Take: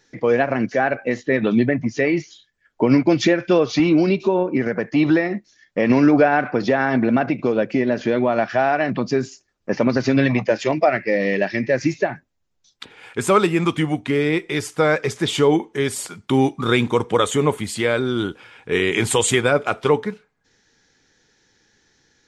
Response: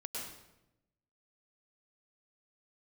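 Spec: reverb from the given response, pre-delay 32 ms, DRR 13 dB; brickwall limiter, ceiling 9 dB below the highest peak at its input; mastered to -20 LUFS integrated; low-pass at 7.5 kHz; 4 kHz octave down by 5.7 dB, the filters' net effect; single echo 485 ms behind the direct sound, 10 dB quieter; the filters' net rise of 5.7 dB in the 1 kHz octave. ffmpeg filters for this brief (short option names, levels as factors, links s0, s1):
-filter_complex "[0:a]lowpass=7500,equalizer=f=1000:t=o:g=8.5,equalizer=f=4000:t=o:g=-8,alimiter=limit=0.376:level=0:latency=1,aecho=1:1:485:0.316,asplit=2[s0][s1];[1:a]atrim=start_sample=2205,adelay=32[s2];[s1][s2]afir=irnorm=-1:irlink=0,volume=0.224[s3];[s0][s3]amix=inputs=2:normalize=0"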